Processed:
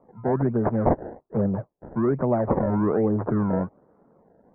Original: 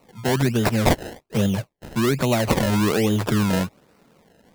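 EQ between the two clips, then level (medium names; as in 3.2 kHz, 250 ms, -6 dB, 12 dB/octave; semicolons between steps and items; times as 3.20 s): Gaussian low-pass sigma 7.9 samples; distance through air 290 m; bass shelf 280 Hz -10.5 dB; +4.5 dB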